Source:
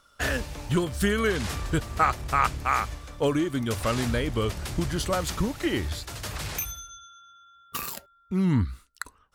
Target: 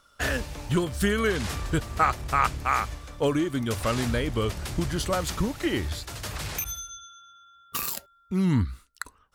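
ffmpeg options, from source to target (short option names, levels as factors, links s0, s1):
-filter_complex "[0:a]asettb=1/sr,asplit=3[s0][s1][s2];[s0]atrim=end=6.644[s3];[s1]atrim=start=6.64:end=8.63,asetpts=PTS-STARTPTS,afade=t=in:d=0.004:c=qsin,afade=t=out:st=1.986:d=0.004:c=qsin,adynamicequalizer=threshold=0.00251:dfrequency=3100:dqfactor=0.7:tfrequency=3100:tqfactor=0.7:attack=5:release=100:ratio=0.375:range=2.5:mode=boostabove:tftype=highshelf[s4];[s2]atrim=start=8.626[s5];[s3][s4]acrossfade=d=0.004:c1=hsin:c2=qsin[s6];[s6][s5]acrossfade=d=0.004:c1=qsin:c2=hsin"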